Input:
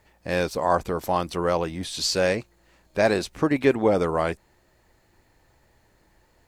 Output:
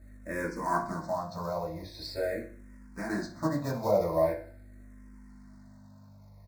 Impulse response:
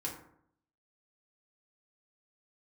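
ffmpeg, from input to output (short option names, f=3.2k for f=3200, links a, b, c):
-filter_complex "[0:a]lowpass=f=7.2k:w=0.5412,lowpass=f=7.2k:w=1.3066,highshelf=f=4.9k:g=-7,asettb=1/sr,asplit=3[a][b][c];[a]atrim=end=1.064[d];[b]atrim=start=1.06:end=3.09,asetpts=PTS-STARTPTS,afade=t=in:d=0.004:c=qsin,afade=t=out:st=2.026:d=0.004:c=qsin,acompressor=threshold=-24dB:ratio=3[e];[c]atrim=start=3.086[f];[d][e]acrossfade=d=0.004:c1=hsin:c2=qsin[g];[g][f]acrossfade=d=0.004:c1=qsin:c2=hsin,aeval=exprs='val(0)+0.01*(sin(2*PI*50*n/s)+sin(2*PI*2*50*n/s)/2+sin(2*PI*3*50*n/s)/3+sin(2*PI*4*50*n/s)/4+sin(2*PI*5*50*n/s)/5)':c=same,acrusher=bits=4:mode=log:mix=0:aa=0.000001,asuperstop=centerf=3000:order=4:qfactor=1.5,aecho=1:1:63|126|189|252|315:0.178|0.0925|0.0481|0.025|0.013[h];[1:a]atrim=start_sample=2205,asetrate=88200,aresample=44100[i];[h][i]afir=irnorm=-1:irlink=0,asplit=2[j][k];[k]afreqshift=-0.43[l];[j][l]amix=inputs=2:normalize=1"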